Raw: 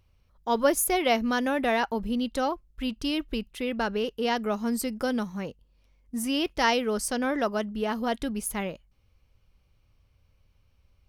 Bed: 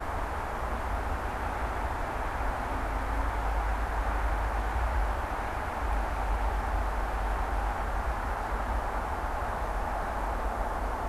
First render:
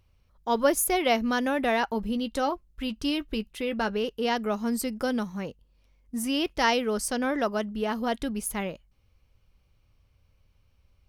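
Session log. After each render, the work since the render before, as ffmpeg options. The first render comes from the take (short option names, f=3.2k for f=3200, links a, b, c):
-filter_complex "[0:a]asettb=1/sr,asplit=3[a][b][c];[a]atrim=end=1.914[d];[b]atrim=start=1.91:end=3.95,asetpts=PTS-STARTPTS,afade=t=in:d=0.004:c=qsin,afade=t=out:st=2.036:d=0.004:c=qsin,asplit=2[e][f];[f]adelay=14,volume=-12dB[g];[e][g]amix=inputs=2:normalize=0,atrim=end_sample=89964[h];[c]atrim=start=3.946[i];[d][h]acrossfade=d=0.004:c1=hsin:c2=qsin[j];[j][i]acrossfade=d=0.004:c1=qsin:c2=hsin"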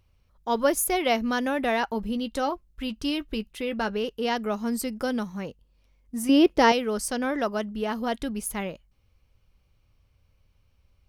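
-filter_complex "[0:a]asettb=1/sr,asplit=3[a][b][c];[a]atrim=end=6.294[d];[b]atrim=start=6.29:end=6.72,asetpts=PTS-STARTPTS,afade=t=in:d=0.004:c=qsin,afade=t=out:st=0.426:d=0.004:c=qsin,equalizer=f=370:t=o:w=2.1:g=11.5[e];[c]atrim=start=6.716[f];[d][e]acrossfade=d=0.004:c1=hsin:c2=qsin[g];[g][f]acrossfade=d=0.004:c1=qsin:c2=hsin"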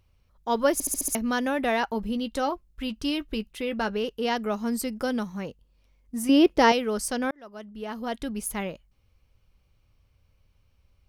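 -filter_complex "[0:a]asplit=8[a][b][c][d][e][f][g][h];[a]atrim=end=0.802[i];[b]atrim=start=0.728:end=0.802[j];[c]atrim=start=0.728:end=0.802[k];[d]atrim=start=0.728:end=0.802[l];[e]atrim=start=0.728:end=0.802[m];[f]atrim=start=0.728:end=0.802[n];[g]atrim=start=1.148:end=7.31,asetpts=PTS-STARTPTS,afade=t=out:st=6.158:d=0.004:c=hsin[o];[h]atrim=start=7.31,asetpts=PTS-STARTPTS,afade=t=in:d=1.14[p];[i][j]acrossfade=d=0.004:c1=hsin:c2=hsin[q];[q][k]acrossfade=d=0.004:c1=hsin:c2=hsin[r];[r][l]acrossfade=d=0.004:c1=hsin:c2=hsin[s];[s][m]acrossfade=d=0.004:c1=hsin:c2=hsin[t];[t][n]acrossfade=d=0.004:c1=hsin:c2=hsin[u];[o][p]concat=n=2:v=0:a=1[v];[u][v]acrossfade=d=0.004:c1=hsin:c2=hsin"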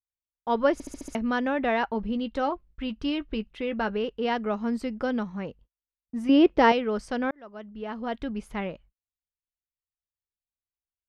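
-af "agate=range=-43dB:threshold=-52dB:ratio=16:detection=peak,lowpass=2.9k"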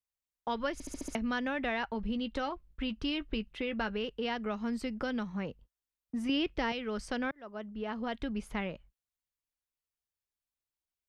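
-filter_complex "[0:a]acrossover=split=150|1600[a][b][c];[b]acompressor=threshold=-34dB:ratio=6[d];[c]alimiter=level_in=4dB:limit=-24dB:level=0:latency=1:release=172,volume=-4dB[e];[a][d][e]amix=inputs=3:normalize=0"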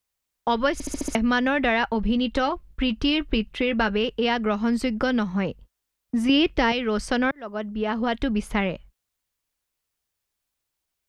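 -af "volume=11.5dB"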